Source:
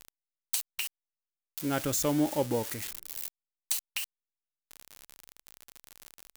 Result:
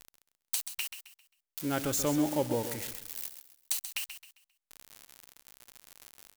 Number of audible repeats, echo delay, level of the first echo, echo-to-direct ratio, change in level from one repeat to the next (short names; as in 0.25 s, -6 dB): 3, 0.133 s, -10.0 dB, -9.5 dB, -9.5 dB